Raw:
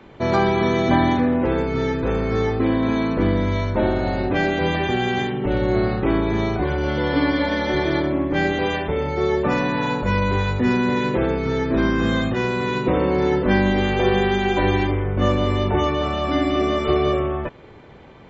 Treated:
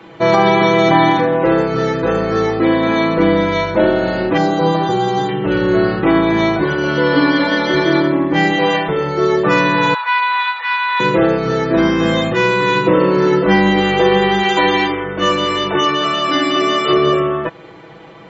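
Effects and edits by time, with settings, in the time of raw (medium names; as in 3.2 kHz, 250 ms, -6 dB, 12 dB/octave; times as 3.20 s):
4.37–5.29 s: high-order bell 2.3 kHz -14 dB 1 oct
9.94–11.00 s: elliptic band-pass 940–4100 Hz, stop band 50 dB
14.43–16.93 s: tilt EQ +2 dB/octave
whole clip: high-pass 220 Hz 6 dB/octave; comb 6.1 ms, depth 84%; loudness maximiser +7 dB; trim -1 dB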